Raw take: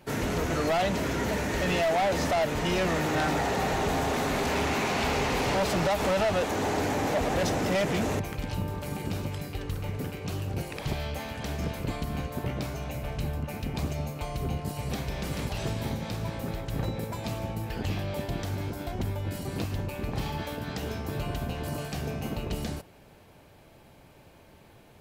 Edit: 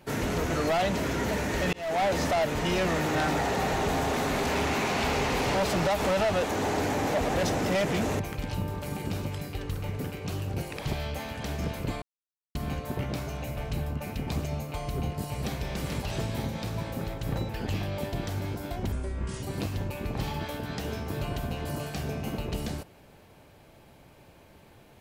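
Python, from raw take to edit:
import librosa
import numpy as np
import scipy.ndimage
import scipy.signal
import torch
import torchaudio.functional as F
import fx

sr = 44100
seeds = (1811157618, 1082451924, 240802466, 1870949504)

y = fx.edit(x, sr, fx.fade_in_span(start_s=1.73, length_s=0.29),
    fx.insert_silence(at_s=12.02, length_s=0.53),
    fx.cut(start_s=16.96, length_s=0.69),
    fx.speed_span(start_s=19.08, length_s=0.33, speed=0.65), tone=tone)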